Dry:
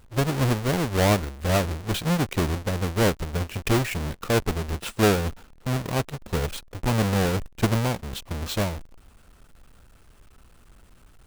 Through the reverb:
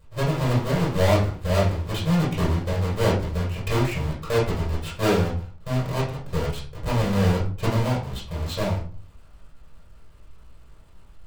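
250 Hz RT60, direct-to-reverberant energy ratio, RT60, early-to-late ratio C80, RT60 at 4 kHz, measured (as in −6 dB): 0.50 s, −6.5 dB, 0.40 s, 11.5 dB, 0.30 s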